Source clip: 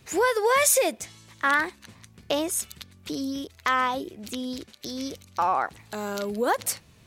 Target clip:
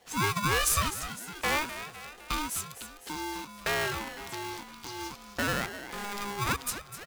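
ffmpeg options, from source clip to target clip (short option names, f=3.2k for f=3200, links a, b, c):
-filter_complex "[0:a]asplit=7[a][b][c][d][e][f][g];[b]adelay=254,afreqshift=130,volume=-12dB[h];[c]adelay=508,afreqshift=260,volume=-17dB[i];[d]adelay=762,afreqshift=390,volume=-22.1dB[j];[e]adelay=1016,afreqshift=520,volume=-27.1dB[k];[f]adelay=1270,afreqshift=650,volume=-32.1dB[l];[g]adelay=1524,afreqshift=780,volume=-37.2dB[m];[a][h][i][j][k][l][m]amix=inputs=7:normalize=0,aeval=exprs='val(0)*sgn(sin(2*PI*610*n/s))':c=same,volume=-6dB"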